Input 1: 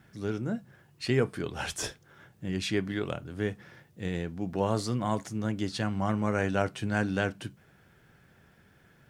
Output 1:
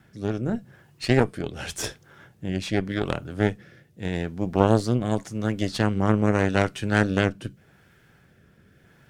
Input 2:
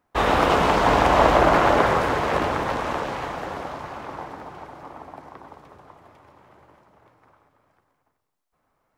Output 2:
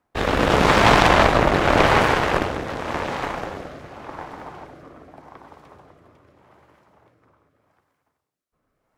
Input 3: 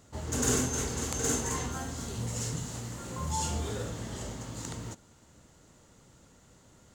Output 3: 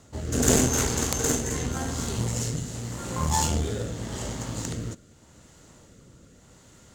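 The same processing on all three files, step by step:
rotary speaker horn 0.85 Hz; added harmonics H 6 -9 dB, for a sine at -5 dBFS; normalise peaks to -2 dBFS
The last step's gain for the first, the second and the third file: +5.5, +2.0, +8.0 dB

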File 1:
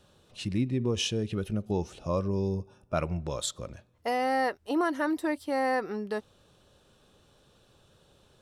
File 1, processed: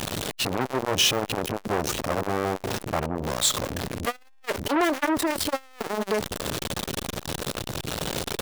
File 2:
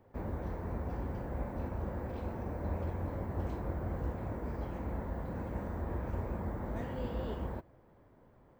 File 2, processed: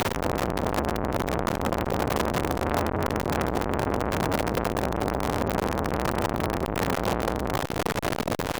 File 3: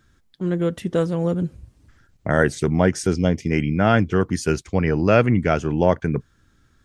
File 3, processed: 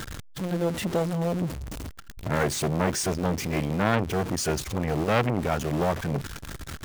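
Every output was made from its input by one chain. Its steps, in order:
zero-crossing step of -24 dBFS; core saturation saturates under 1200 Hz; match loudness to -27 LUFS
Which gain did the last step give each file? +5.5, +11.5, -3.5 dB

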